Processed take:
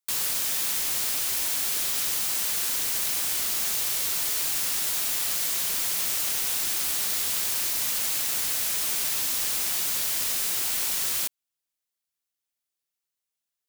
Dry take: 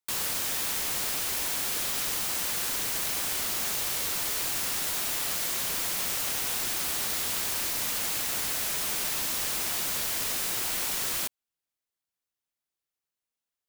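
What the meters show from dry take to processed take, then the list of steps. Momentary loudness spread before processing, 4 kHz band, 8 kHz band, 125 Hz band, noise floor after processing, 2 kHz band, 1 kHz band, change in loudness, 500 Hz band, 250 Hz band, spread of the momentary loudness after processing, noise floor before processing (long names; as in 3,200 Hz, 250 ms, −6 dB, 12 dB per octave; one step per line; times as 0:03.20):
0 LU, +2.0 dB, +3.5 dB, −3.5 dB, below −85 dBFS, 0.0 dB, −2.0 dB, +3.5 dB, −3.0 dB, −3.5 dB, 0 LU, below −85 dBFS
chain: high-shelf EQ 2,300 Hz +7.5 dB
level −3.5 dB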